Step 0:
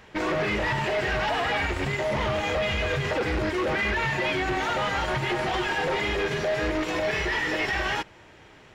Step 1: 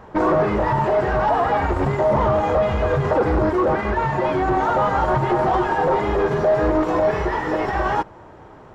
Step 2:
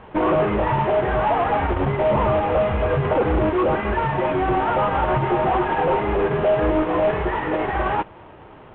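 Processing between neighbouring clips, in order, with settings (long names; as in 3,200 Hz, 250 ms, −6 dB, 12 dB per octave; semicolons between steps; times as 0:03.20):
speech leveller; high shelf with overshoot 1,600 Hz −13.5 dB, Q 1.5; level +7.5 dB
variable-slope delta modulation 16 kbit/s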